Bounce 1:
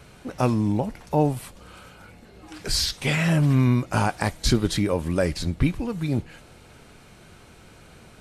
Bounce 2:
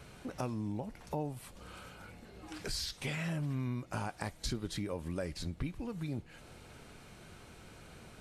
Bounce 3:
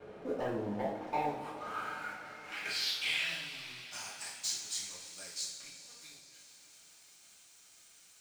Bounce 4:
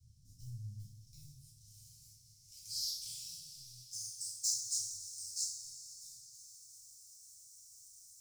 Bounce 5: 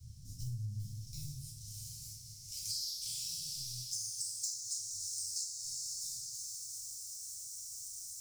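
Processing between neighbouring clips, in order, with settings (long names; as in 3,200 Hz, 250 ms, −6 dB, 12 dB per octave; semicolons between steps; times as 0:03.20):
downward compressor 2.5 to 1, threshold −35 dBFS, peak gain reduction 13.5 dB; level −4.5 dB
band-pass filter sweep 470 Hz → 6,800 Hz, 0:00.30–0:04.18; leveller curve on the samples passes 3; coupled-rooms reverb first 0.54 s, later 5 s, from −16 dB, DRR −8 dB; level −4 dB
Chebyshev band-stop filter 120–5,300 Hz, order 4; level +4 dB
downward compressor 16 to 1, threshold −48 dBFS, peak gain reduction 19.5 dB; level +12 dB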